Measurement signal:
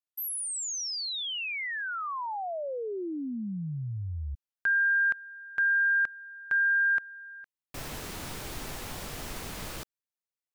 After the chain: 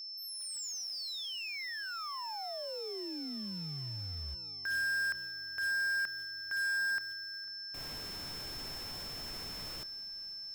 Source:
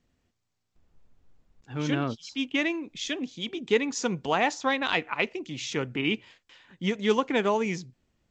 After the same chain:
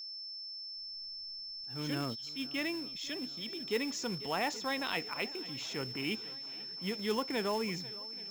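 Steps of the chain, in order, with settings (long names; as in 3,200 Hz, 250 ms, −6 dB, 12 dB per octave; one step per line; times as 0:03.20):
fade in at the beginning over 0.55 s
on a send: feedback echo with a long and a short gap by turns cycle 827 ms, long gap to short 1.5 to 1, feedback 59%, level −22 dB
on the sum: transient designer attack −3 dB, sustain +3 dB
floating-point word with a short mantissa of 2 bits
steady tone 5,300 Hz −33 dBFS
level −8.5 dB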